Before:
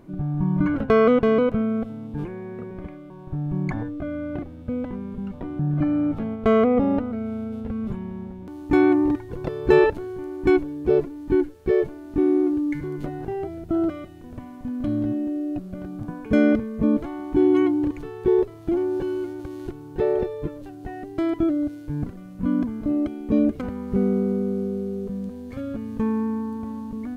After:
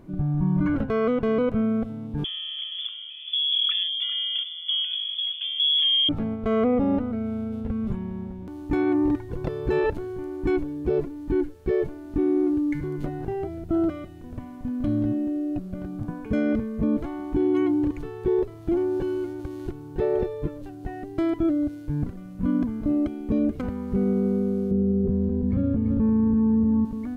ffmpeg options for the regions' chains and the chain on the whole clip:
ffmpeg -i in.wav -filter_complex "[0:a]asettb=1/sr,asplit=3[link_01][link_02][link_03];[link_01]atrim=end=2.244[link_04];[link_02]atrim=start=2.24:end=6.09,asetpts=PTS-STARTPTS,afade=type=in:duration=0.004:curve=qsin,afade=type=out:start_time=3.846:duration=0.004:curve=qsin,tiltshelf=frequency=640:gain=4.5,aecho=1:1:402:0.2,atrim=end_sample=169785,lowpass=frequency=3000:width_type=q:width=0.5098,lowpass=frequency=3000:width_type=q:width=0.6013,lowpass=frequency=3000:width_type=q:width=0.9,lowpass=frequency=3000:width_type=q:width=2.563,afreqshift=-3500[link_05];[link_03]atrim=start=6.086[link_06];[link_04][link_05]acrossfade=duration=0.004:curve1=hsin:curve2=qsin[link_07];[link_07][link_06]acrossfade=duration=0.004:curve1=qsin:curve2=hsin,asettb=1/sr,asplit=3[link_08][link_09][link_10];[link_08]atrim=end=24.714[link_11];[link_09]atrim=start=24.71:end=26.85,asetpts=PTS-STARTPTS,afade=type=in:duration=0.004:curve=qsin,afade=type=out:start_time=2.136:duration=0.004:curve=qsin,lowpass=frequency=1300:poles=1,equalizer=frequency=100:width=0.32:gain=11.5,aecho=1:1:339:0.473,atrim=end_sample=94374[link_12];[link_10]atrim=start=26.846[link_13];[link_11][link_12]acrossfade=duration=0.004:curve1=hsin:curve2=qsin[link_14];[link_14][link_13]acrossfade=duration=0.004:curve1=qsin:curve2=hsin,lowshelf=frequency=160:gain=5.5,alimiter=limit=-14dB:level=0:latency=1:release=24,volume=-1.5dB" out.wav

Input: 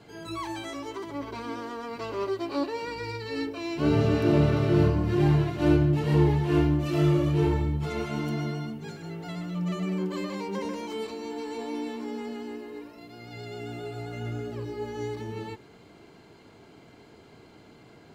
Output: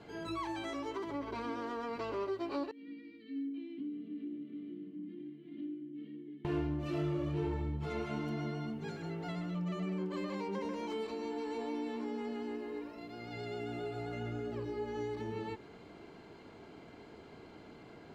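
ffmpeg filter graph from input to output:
ffmpeg -i in.wav -filter_complex "[0:a]asettb=1/sr,asplit=3[link_01][link_02][link_03];[link_01]atrim=end=2.714[link_04];[link_02]atrim=start=2.71:end=6.45,asetpts=PTS-STARTPTS,afade=type=in:duration=0.004:curve=qsin,afade=type=out:start_time=3.736:duration=0.004:curve=qsin,acompressor=threshold=-31dB:ratio=10:attack=3.2:release=140:knee=1:detection=peak,asplit=3[link_05][link_06][link_07];[link_05]bandpass=frequency=270:width_type=q:width=8,volume=0dB[link_08];[link_06]bandpass=frequency=2290:width_type=q:width=8,volume=-6dB[link_09];[link_07]bandpass=frequency=3010:width_type=q:width=8,volume=-9dB[link_10];[link_08][link_09][link_10]amix=inputs=3:normalize=0,highpass=frequency=170:width=0.5412,highpass=frequency=170:width=1.3066,equalizer=frequency=190:width_type=q:width=4:gain=9,equalizer=frequency=290:width_type=q:width=4:gain=4,equalizer=frequency=530:width_type=q:width=4:gain=-8,equalizer=frequency=1500:width_type=q:width=4:gain=-9,equalizer=frequency=2400:width_type=q:width=4:gain=-10,lowpass=frequency=4000:width=0.5412,lowpass=frequency=4000:width=1.3066[link_11];[link_03]atrim=start=6.446[link_12];[link_04][link_11]acrossfade=duration=0.004:curve1=hsin:curve2=qsin[link_13];[link_13][link_12]acrossfade=duration=0.004:curve1=qsin:curve2=hsin,lowpass=frequency=3100:poles=1,equalizer=frequency=120:width=1.8:gain=-5,acompressor=threshold=-37dB:ratio=2.5" out.wav

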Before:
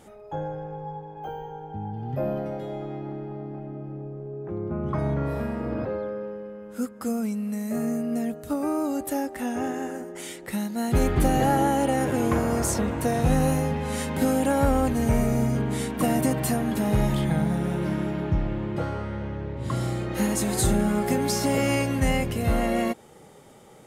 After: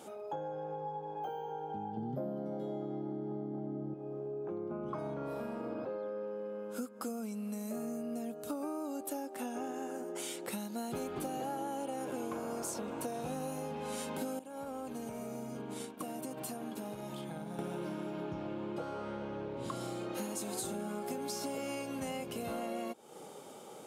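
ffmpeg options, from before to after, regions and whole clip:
ffmpeg -i in.wav -filter_complex "[0:a]asettb=1/sr,asplit=3[link_01][link_02][link_03];[link_01]atrim=end=1.974[link_04];[link_02]atrim=start=1.97:end=3.94,asetpts=PTS-STARTPTS,afade=type=in:duration=0.004:curve=qsin,afade=type=out:start_time=1.966:duration=0.004:curve=qsin,asuperstop=centerf=2600:order=4:qfactor=4.6,equalizer=frequency=180:width_type=o:width=2.3:gain=13.5[link_05];[link_03]atrim=start=3.936[link_06];[link_04][link_05]acrossfade=duration=0.004:curve1=hsin:curve2=qsin[link_07];[link_07][link_06]acrossfade=duration=0.004:curve1=qsin:curve2=hsin,asettb=1/sr,asplit=3[link_08][link_09][link_10];[link_08]atrim=end=14.394[link_11];[link_09]atrim=start=14.39:end=17.59,asetpts=PTS-STARTPTS,afade=type=in:duration=0.004:curve=qsin,afade=type=out:start_time=3.196:duration=0.004:curve=qsin,agate=range=-33dB:threshold=-20dB:ratio=3:release=100:detection=peak,acompressor=threshold=-33dB:ratio=16:attack=3.2:release=140:knee=1:detection=peak[link_12];[link_10]atrim=start=17.586[link_13];[link_11][link_12]acrossfade=duration=0.004:curve1=hsin:curve2=qsin[link_14];[link_14][link_13]acrossfade=duration=0.004:curve1=qsin:curve2=hsin,highpass=260,equalizer=frequency=1900:width=4.8:gain=-12,acompressor=threshold=-39dB:ratio=6,volume=2dB" out.wav

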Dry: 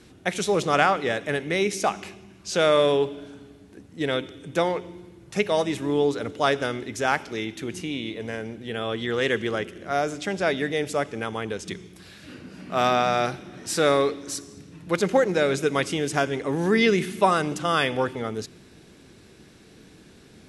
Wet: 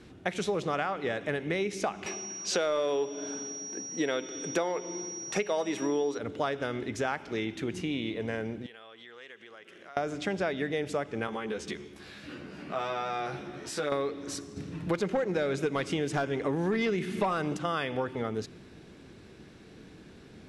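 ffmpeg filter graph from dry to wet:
ffmpeg -i in.wav -filter_complex "[0:a]asettb=1/sr,asplit=3[link_01][link_02][link_03];[link_01]atrim=end=2.064[link_04];[link_02]atrim=start=2.06:end=6.18,asetpts=PTS-STARTPTS,afade=type=in:duration=0.004:curve=qsin,afade=type=out:start_time=4.116:duration=0.004:curve=qsin,highpass=280,aeval=exprs='val(0)+0.0126*sin(2*PI*5700*n/s)':channel_layout=same,acontrast=67[link_05];[link_03]atrim=start=6.176[link_06];[link_04][link_05]acrossfade=duration=0.004:curve1=hsin:curve2=qsin[link_07];[link_07][link_06]acrossfade=duration=0.004:curve1=qsin:curve2=hsin,asettb=1/sr,asplit=3[link_08][link_09][link_10];[link_08]atrim=end=8.664[link_11];[link_09]atrim=start=8.66:end=9.97,asetpts=PTS-STARTPTS,afade=type=in:duration=0.004:curve=qsin,afade=type=out:start_time=1.306:duration=0.004:curve=qsin,acompressor=threshold=-37dB:ratio=16:attack=3.2:release=140:knee=1:detection=peak,highpass=frequency=1300:poles=1[link_12];[link_10]atrim=start=9.966[link_13];[link_11][link_12]acrossfade=duration=0.004:curve1=hsin:curve2=qsin[link_14];[link_14][link_13]acrossfade=duration=0.004:curve1=qsin:curve2=hsin,asettb=1/sr,asplit=3[link_15][link_16][link_17];[link_15]atrim=end=11.274[link_18];[link_16]atrim=start=11.27:end=13.92,asetpts=PTS-STARTPTS,afade=type=in:duration=0.004:curve=qsin,afade=type=out:start_time=2.646:duration=0.004:curve=qsin,lowshelf=frequency=170:gain=-7.5,acompressor=threshold=-32dB:ratio=2.5:attack=3.2:release=140:knee=1:detection=peak,asplit=2[link_19][link_20];[link_20]adelay=14,volume=-2.5dB[link_21];[link_19][link_21]amix=inputs=2:normalize=0,atrim=end_sample=116865[link_22];[link_17]atrim=start=13.916[link_23];[link_18][link_22]acrossfade=duration=0.004:curve1=hsin:curve2=qsin[link_24];[link_24][link_23]acrossfade=duration=0.004:curve1=qsin:curve2=hsin,asettb=1/sr,asplit=3[link_25][link_26][link_27];[link_25]atrim=end=14.564[link_28];[link_26]atrim=start=14.56:end=17.57,asetpts=PTS-STARTPTS,afade=type=in:duration=0.004:curve=qsin,afade=type=out:start_time=3.006:duration=0.004:curve=qsin,acontrast=51,volume=8.5dB,asoftclip=hard,volume=-8.5dB[link_29];[link_27]atrim=start=17.566[link_30];[link_28][link_29]acrossfade=duration=0.004:curve1=hsin:curve2=qsin[link_31];[link_31][link_30]acrossfade=duration=0.004:curve1=qsin:curve2=hsin,aemphasis=mode=reproduction:type=50kf,acompressor=threshold=-27dB:ratio=6" out.wav

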